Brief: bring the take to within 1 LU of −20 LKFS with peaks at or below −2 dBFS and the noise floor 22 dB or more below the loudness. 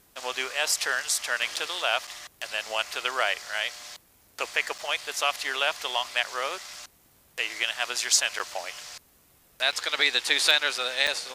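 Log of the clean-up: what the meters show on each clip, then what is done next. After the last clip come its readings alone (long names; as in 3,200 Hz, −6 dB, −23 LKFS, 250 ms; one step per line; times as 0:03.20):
number of dropouts 6; longest dropout 6.2 ms; integrated loudness −26.0 LKFS; sample peak −4.5 dBFS; target loudness −20.0 LKFS
→ repair the gap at 0:01.56/0:02.07/0:04.78/0:08.39/0:09.72/0:11.07, 6.2 ms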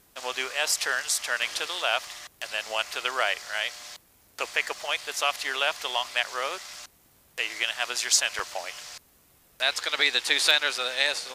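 number of dropouts 0; integrated loudness −26.0 LKFS; sample peak −4.5 dBFS; target loudness −20.0 LKFS
→ level +6 dB
brickwall limiter −2 dBFS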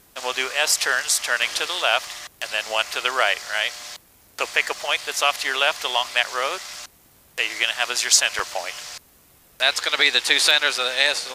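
integrated loudness −20.5 LKFS; sample peak −2.0 dBFS; background noise floor −55 dBFS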